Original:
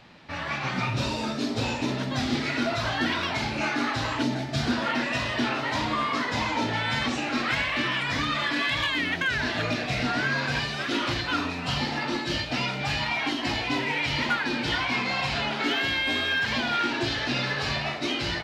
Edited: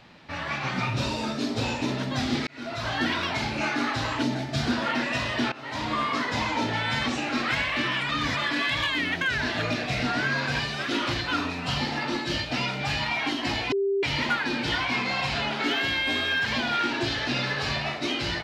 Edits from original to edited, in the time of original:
0:02.47–0:02.97: fade in
0:05.52–0:05.96: fade in, from −19 dB
0:08.09–0:08.37: reverse
0:13.72–0:14.03: beep over 395 Hz −21.5 dBFS

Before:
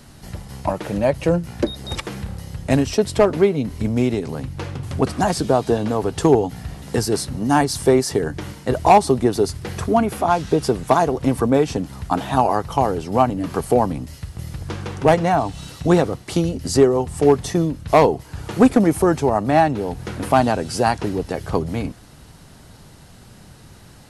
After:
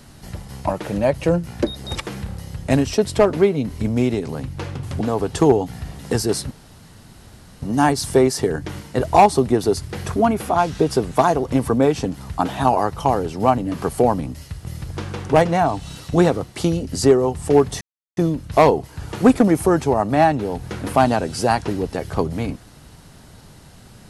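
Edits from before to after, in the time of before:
0:05.01–0:05.84: remove
0:07.34: splice in room tone 1.11 s
0:17.53: splice in silence 0.36 s

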